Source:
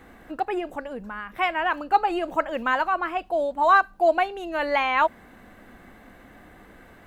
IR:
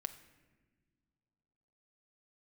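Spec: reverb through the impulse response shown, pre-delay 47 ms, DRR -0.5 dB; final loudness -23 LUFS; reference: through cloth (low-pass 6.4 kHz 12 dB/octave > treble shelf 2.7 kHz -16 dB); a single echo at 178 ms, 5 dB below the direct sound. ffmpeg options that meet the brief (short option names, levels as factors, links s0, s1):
-filter_complex "[0:a]aecho=1:1:178:0.562,asplit=2[s0][s1];[1:a]atrim=start_sample=2205,adelay=47[s2];[s1][s2]afir=irnorm=-1:irlink=0,volume=1.33[s3];[s0][s3]amix=inputs=2:normalize=0,lowpass=6400,highshelf=f=2700:g=-16,volume=0.841"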